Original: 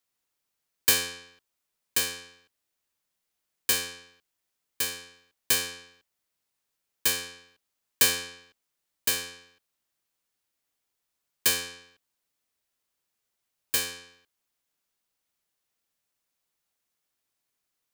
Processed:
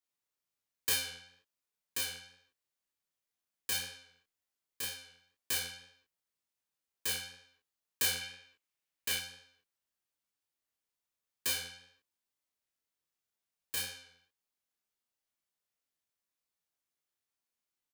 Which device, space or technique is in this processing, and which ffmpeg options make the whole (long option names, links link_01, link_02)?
double-tracked vocal: -filter_complex "[0:a]asplit=2[link_01][link_02];[link_02]adelay=33,volume=-2.5dB[link_03];[link_01][link_03]amix=inputs=2:normalize=0,flanger=delay=19.5:depth=4.8:speed=2,asettb=1/sr,asplit=3[link_04][link_05][link_06];[link_04]atrim=end=8.214[link_07];[link_05]atrim=start=8.21:end=9.2,asetpts=PTS-STARTPTS,afade=type=in:duration=0.004:curve=qsin,afade=type=out:start_time=0.986:duration=0.004:curve=qsin,equalizer=frequency=2400:width_type=o:width=1:gain=5[link_08];[link_06]atrim=start=9.196[link_09];[link_07][link_08]acrossfade=duration=0.004:curve1=hsin:curve2=qsin[link_10];[link_10][link_09]acrossfade=duration=0.004:curve1=qsin:curve2=hsin,volume=-7.5dB"